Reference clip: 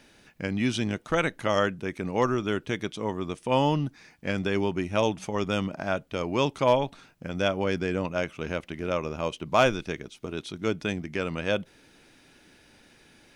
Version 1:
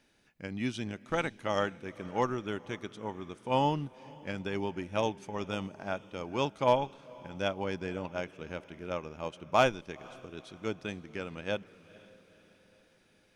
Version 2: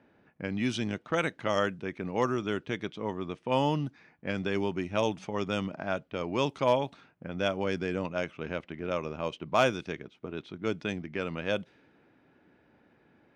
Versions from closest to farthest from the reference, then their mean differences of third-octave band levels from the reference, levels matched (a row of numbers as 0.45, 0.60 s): 2, 1; 2.0, 3.5 dB